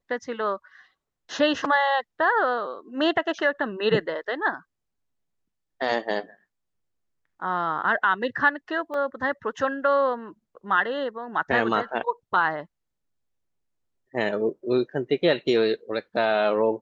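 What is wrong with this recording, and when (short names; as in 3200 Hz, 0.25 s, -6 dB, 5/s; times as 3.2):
8.94 gap 2.5 ms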